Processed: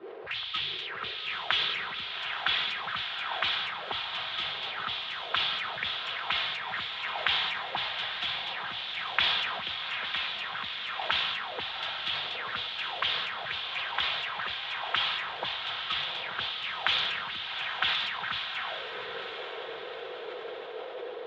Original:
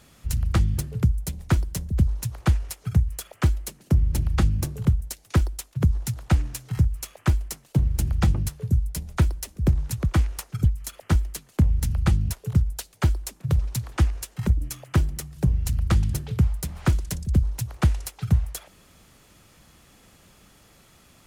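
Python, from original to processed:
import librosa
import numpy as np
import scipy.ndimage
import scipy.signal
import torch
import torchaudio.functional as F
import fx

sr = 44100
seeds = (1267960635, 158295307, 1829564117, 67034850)

y = fx.spec_quant(x, sr, step_db=30)
y = fx.band_shelf(y, sr, hz=1500.0, db=11.5, octaves=2.6)
y = fx.dmg_noise_band(y, sr, seeds[0], low_hz=350.0, high_hz=3800.0, level_db=-34.0)
y = fx.air_absorb(y, sr, metres=160.0)
y = fx.auto_wah(y, sr, base_hz=200.0, top_hz=3500.0, q=5.3, full_db=-21.5, direction='up')
y = scipy.signal.sosfilt(scipy.signal.butter(2, 70.0, 'highpass', fs=sr, output='sos'), y)
y = fx.notch_comb(y, sr, f0_hz=290.0)
y = fx.echo_diffused(y, sr, ms=828, feedback_pct=52, wet_db=-4.5)
y = fx.sustainer(y, sr, db_per_s=31.0)
y = y * 10.0 ** (7.0 / 20.0)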